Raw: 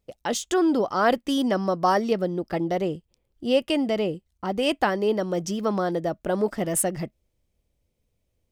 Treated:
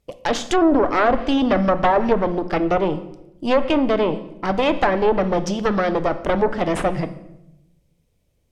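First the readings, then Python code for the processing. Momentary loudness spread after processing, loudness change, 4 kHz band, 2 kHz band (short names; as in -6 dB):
8 LU, +5.0 dB, +1.5 dB, +6.0 dB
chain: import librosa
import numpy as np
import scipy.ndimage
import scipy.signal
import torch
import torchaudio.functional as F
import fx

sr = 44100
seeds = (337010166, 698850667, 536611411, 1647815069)

y = fx.cheby_harmonics(x, sr, harmonics=(5, 6), levels_db=(-13, -9), full_scale_db=-8.5)
y = fx.room_shoebox(y, sr, seeds[0], volume_m3=280.0, walls='mixed', distance_m=0.35)
y = fx.env_lowpass_down(y, sr, base_hz=1200.0, full_db=-10.5)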